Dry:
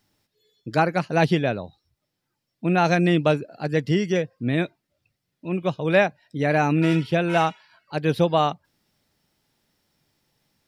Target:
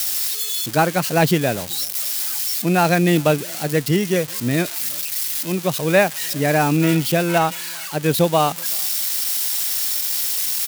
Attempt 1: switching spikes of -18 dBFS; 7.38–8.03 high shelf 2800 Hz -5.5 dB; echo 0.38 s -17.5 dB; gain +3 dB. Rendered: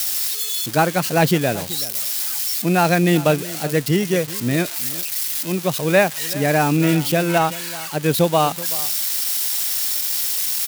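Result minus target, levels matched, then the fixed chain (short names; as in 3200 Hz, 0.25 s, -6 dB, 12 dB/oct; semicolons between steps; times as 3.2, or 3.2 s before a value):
echo-to-direct +11 dB
switching spikes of -18 dBFS; 7.38–8.03 high shelf 2800 Hz -5.5 dB; echo 0.38 s -28.5 dB; gain +3 dB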